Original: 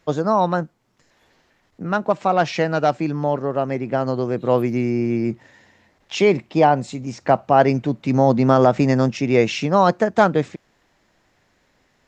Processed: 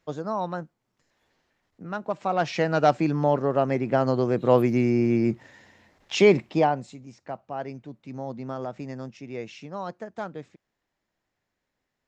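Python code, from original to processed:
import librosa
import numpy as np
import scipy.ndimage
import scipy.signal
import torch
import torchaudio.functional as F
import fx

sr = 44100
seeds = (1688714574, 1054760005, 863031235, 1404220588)

y = fx.gain(x, sr, db=fx.line((1.99, -11.0), (2.89, -1.0), (6.45, -1.0), (6.72, -9.0), (7.25, -19.0)))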